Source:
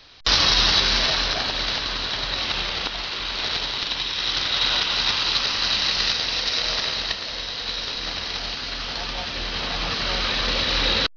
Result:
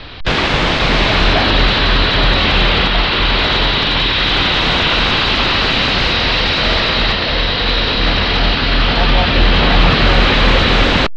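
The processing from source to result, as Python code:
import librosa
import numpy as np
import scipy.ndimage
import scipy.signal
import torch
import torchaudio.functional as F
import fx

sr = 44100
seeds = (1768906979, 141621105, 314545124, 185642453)

y = fx.fold_sine(x, sr, drive_db=18, ceiling_db=-4.0)
y = scipy.signal.sosfilt(scipy.signal.butter(4, 3600.0, 'lowpass', fs=sr, output='sos'), y)
y = fx.low_shelf(y, sr, hz=390.0, db=8.0)
y = y * 10.0 ** (-4.5 / 20.0)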